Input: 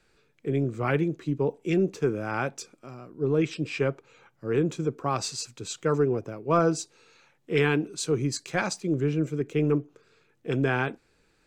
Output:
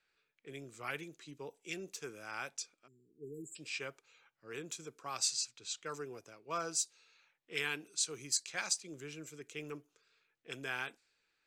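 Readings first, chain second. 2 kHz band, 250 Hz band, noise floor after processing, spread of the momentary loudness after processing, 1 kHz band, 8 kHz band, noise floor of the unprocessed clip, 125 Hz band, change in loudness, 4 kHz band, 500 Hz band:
−9.0 dB, −23.0 dB, −82 dBFS, 15 LU, −13.5 dB, +0.5 dB, −67 dBFS, −26.0 dB, −12.0 dB, −2.0 dB, −20.0 dB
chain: time-frequency box erased 0:02.87–0:03.56, 470–6,800 Hz
low-pass that shuts in the quiet parts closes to 2,600 Hz, open at −23 dBFS
first-order pre-emphasis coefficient 0.97
level +3 dB

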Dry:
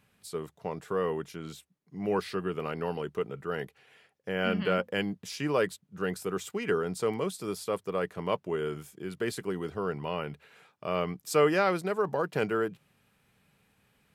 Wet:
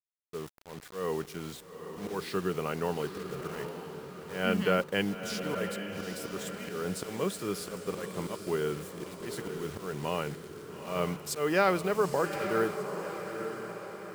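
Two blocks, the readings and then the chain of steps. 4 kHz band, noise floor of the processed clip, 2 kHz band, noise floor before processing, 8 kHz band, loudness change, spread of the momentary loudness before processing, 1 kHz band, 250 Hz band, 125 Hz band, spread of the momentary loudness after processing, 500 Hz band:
+0.5 dB, −50 dBFS, −0.5 dB, −71 dBFS, +2.0 dB, −1.5 dB, 12 LU, −0.5 dB, −0.5 dB, −0.5 dB, 14 LU, −2.0 dB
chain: volume swells 225 ms
bit reduction 8 bits
feedback delay with all-pass diffusion 859 ms, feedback 53%, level −8 dB
level +1 dB

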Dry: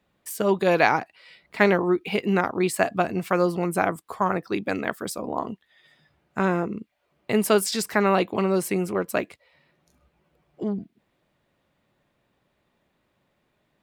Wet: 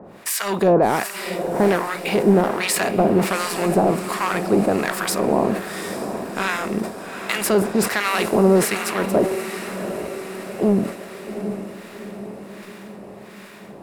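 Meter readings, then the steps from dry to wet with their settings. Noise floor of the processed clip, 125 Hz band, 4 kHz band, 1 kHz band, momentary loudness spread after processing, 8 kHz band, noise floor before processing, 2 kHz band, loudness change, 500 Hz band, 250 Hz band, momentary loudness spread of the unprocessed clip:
−40 dBFS, +5.5 dB, +6.5 dB, +3.5 dB, 19 LU, +8.0 dB, −72 dBFS, +3.0 dB, +3.5 dB, +5.0 dB, +5.5 dB, 13 LU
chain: compressor on every frequency bin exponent 0.6
in parallel at +3 dB: brickwall limiter −9.5 dBFS, peak gain reduction 8 dB
on the sum: soft clipping −5.5 dBFS, distortion −15 dB
two-band tremolo in antiphase 1.3 Hz, depth 100%, crossover 970 Hz
on a send: feedback delay with all-pass diffusion 764 ms, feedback 55%, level −9 dB
on the sum: level that may fall only so fast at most 110 dB per second

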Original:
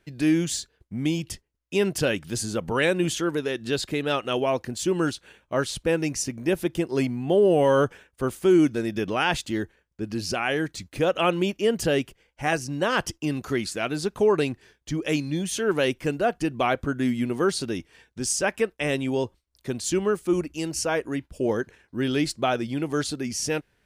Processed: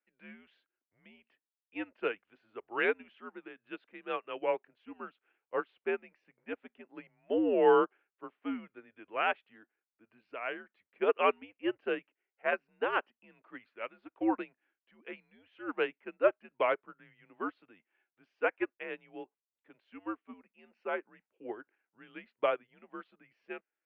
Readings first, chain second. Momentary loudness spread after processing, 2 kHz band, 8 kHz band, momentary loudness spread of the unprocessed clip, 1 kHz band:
20 LU, −8.5 dB, below −40 dB, 9 LU, −6.5 dB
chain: single-sideband voice off tune −100 Hz 480–2,800 Hz
expander for the loud parts 2.5 to 1, over −34 dBFS

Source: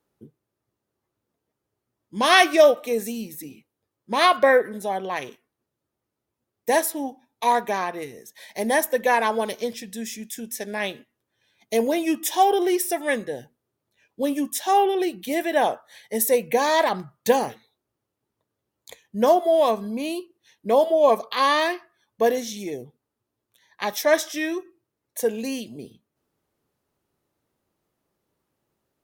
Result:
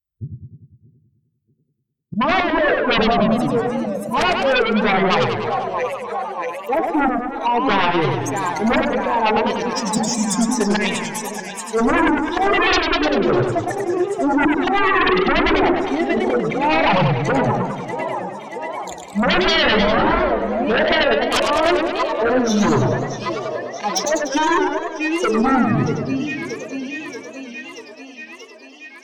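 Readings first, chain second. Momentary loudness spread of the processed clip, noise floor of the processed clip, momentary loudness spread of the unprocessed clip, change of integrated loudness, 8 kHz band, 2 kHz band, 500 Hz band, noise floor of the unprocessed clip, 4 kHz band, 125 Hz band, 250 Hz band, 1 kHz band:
12 LU, −54 dBFS, 16 LU, +4.0 dB, +3.0 dB, +7.0 dB, +3.0 dB, −83 dBFS, +7.0 dB, can't be measured, +10.0 dB, +5.0 dB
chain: spectral dynamics exaggerated over time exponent 2
in parallel at +1 dB: downward compressor 6 to 1, threshold −35 dBFS, peak gain reduction 21 dB
on the sum: treble cut that deepens with the level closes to 490 Hz, closed at −20.5 dBFS
volume swells 339 ms
harmonic generator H 2 −14 dB, 5 −21 dB, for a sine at −15 dBFS
on a send: feedback echo with a high-pass in the loop 633 ms, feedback 76%, high-pass 330 Hz, level −14 dB
on the sum: treble cut that deepens with the level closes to 820 Hz, closed at −28 dBFS
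hum removal 73.83 Hz, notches 8
sine wavefolder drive 20 dB, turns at −14 dBFS
feedback echo with a swinging delay time 100 ms, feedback 63%, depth 203 cents, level −5 dB

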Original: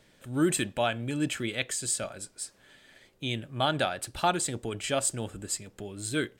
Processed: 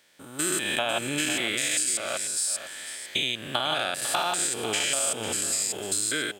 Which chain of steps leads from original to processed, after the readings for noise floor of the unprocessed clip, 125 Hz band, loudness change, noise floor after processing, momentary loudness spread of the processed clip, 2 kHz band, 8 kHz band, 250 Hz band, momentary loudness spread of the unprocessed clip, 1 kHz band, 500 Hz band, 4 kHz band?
−63 dBFS, −7.5 dB, +4.5 dB, −45 dBFS, 4 LU, +6.0 dB, +8.0 dB, −3.5 dB, 11 LU, +1.0 dB, −0.5 dB, +8.0 dB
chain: spectrum averaged block by block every 200 ms
high-pass filter 1,200 Hz 6 dB per octave
high-shelf EQ 9,400 Hz +5 dB
automatic gain control gain up to 16 dB
brickwall limiter −10.5 dBFS, peak gain reduction 7 dB
downward compressor, threshold −27 dBFS, peak gain reduction 9.5 dB
on a send: single-tap delay 499 ms −12 dB
on the sum: level +3.5 dB

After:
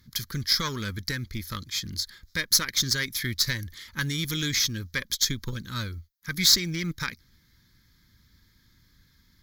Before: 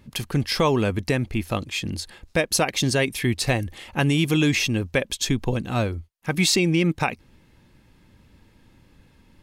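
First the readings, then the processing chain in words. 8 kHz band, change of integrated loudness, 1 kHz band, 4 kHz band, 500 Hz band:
+1.5 dB, −3.0 dB, −11.0 dB, +2.5 dB, −17.5 dB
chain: high-shelf EQ 6,800 Hz +9 dB
floating-point word with a short mantissa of 6 bits
harmonic generator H 6 −21 dB, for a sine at −3 dBFS
guitar amp tone stack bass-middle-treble 5-5-5
phaser with its sweep stopped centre 2,700 Hz, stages 6
level +8.5 dB

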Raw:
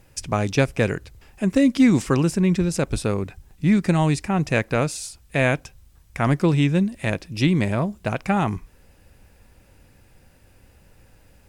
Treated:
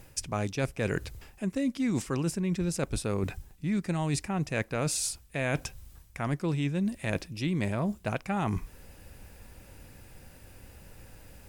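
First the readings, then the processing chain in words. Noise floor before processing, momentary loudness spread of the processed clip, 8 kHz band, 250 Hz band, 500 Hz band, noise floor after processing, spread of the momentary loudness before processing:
−54 dBFS, 7 LU, −1.5 dB, −10.5 dB, −9.5 dB, −55 dBFS, 9 LU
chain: high-shelf EQ 8,900 Hz +5.5 dB
reversed playback
downward compressor 6 to 1, threshold −30 dBFS, peak gain reduction 17 dB
reversed playback
level +2.5 dB

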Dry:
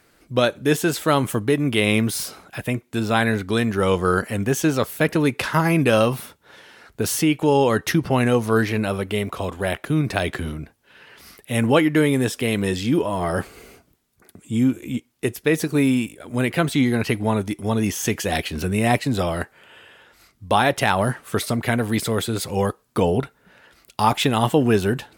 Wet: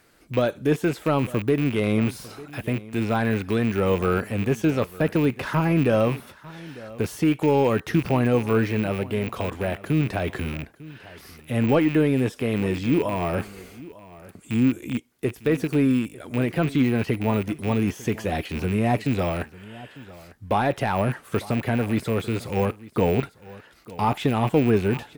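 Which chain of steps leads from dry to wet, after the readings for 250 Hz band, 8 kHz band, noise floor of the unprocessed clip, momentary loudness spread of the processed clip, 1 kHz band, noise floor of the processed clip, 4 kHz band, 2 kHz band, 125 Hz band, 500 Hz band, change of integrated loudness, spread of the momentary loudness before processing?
−1.5 dB, −13.0 dB, −61 dBFS, 16 LU, −4.5 dB, −51 dBFS, −9.0 dB, −6.0 dB, −1.0 dB, −2.5 dB, −2.5 dB, 9 LU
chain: loose part that buzzes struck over −29 dBFS, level −18 dBFS
de-essing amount 90%
on a send: single-tap delay 899 ms −19.5 dB
on the sum: level −1 dB

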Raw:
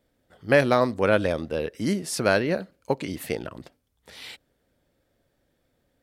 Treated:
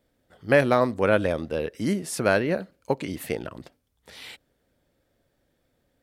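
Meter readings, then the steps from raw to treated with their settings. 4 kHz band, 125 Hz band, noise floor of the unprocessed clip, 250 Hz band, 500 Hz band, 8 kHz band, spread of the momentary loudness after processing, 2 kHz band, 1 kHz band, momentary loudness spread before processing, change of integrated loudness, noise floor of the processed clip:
−3.0 dB, 0.0 dB, −72 dBFS, 0.0 dB, 0.0 dB, −1.5 dB, 21 LU, −0.5 dB, 0.0 dB, 20 LU, 0.0 dB, −72 dBFS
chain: dynamic equaliser 4,800 Hz, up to −6 dB, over −46 dBFS, Q 1.6

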